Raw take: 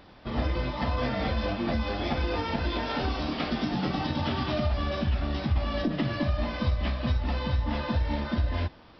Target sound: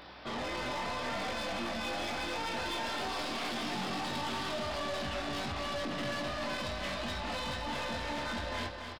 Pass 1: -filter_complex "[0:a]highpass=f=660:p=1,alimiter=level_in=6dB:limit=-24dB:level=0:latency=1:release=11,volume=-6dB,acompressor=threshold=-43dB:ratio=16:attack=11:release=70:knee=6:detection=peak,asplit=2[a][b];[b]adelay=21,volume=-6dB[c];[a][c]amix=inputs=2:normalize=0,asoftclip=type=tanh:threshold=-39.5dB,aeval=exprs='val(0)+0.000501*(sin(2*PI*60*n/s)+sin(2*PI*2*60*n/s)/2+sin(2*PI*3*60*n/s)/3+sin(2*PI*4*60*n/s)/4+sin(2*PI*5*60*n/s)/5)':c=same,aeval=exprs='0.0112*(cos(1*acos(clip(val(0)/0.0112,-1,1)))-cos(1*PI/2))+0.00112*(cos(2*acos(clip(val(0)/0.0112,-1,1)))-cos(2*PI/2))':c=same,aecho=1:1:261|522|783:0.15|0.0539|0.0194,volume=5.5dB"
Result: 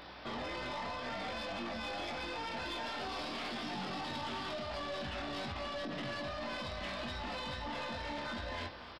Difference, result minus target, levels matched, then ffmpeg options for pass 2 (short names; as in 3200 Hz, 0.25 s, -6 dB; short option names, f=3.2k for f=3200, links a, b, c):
compressor: peak gain reduction +8.5 dB; echo-to-direct -9.5 dB
-filter_complex "[0:a]highpass=f=660:p=1,alimiter=level_in=6dB:limit=-24dB:level=0:latency=1:release=11,volume=-6dB,asplit=2[a][b];[b]adelay=21,volume=-6dB[c];[a][c]amix=inputs=2:normalize=0,asoftclip=type=tanh:threshold=-39.5dB,aeval=exprs='val(0)+0.000501*(sin(2*PI*60*n/s)+sin(2*PI*2*60*n/s)/2+sin(2*PI*3*60*n/s)/3+sin(2*PI*4*60*n/s)/4+sin(2*PI*5*60*n/s)/5)':c=same,aeval=exprs='0.0112*(cos(1*acos(clip(val(0)/0.0112,-1,1)))-cos(1*PI/2))+0.00112*(cos(2*acos(clip(val(0)/0.0112,-1,1)))-cos(2*PI/2))':c=same,aecho=1:1:261|522|783|1044:0.447|0.161|0.0579|0.0208,volume=5.5dB"